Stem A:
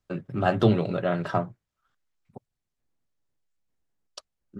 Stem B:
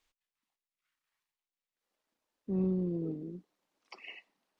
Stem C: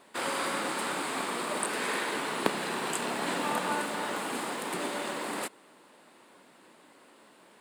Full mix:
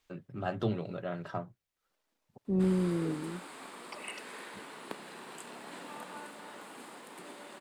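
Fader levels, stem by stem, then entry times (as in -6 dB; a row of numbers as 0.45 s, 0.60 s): -11.5 dB, +3.0 dB, -14.5 dB; 0.00 s, 0.00 s, 2.45 s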